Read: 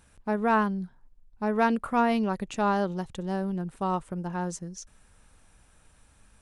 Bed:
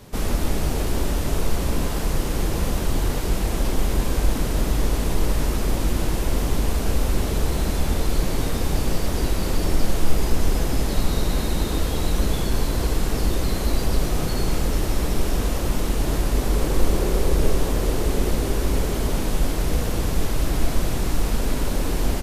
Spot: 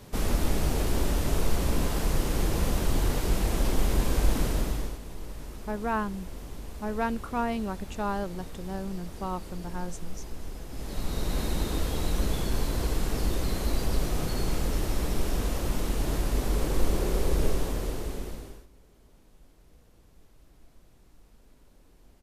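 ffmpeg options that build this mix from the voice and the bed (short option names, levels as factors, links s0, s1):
-filter_complex "[0:a]adelay=5400,volume=0.531[s0];[1:a]volume=2.82,afade=t=out:st=4.44:d=0.55:silence=0.177828,afade=t=in:st=10.69:d=0.73:silence=0.237137,afade=t=out:st=17.43:d=1.24:silence=0.0334965[s1];[s0][s1]amix=inputs=2:normalize=0"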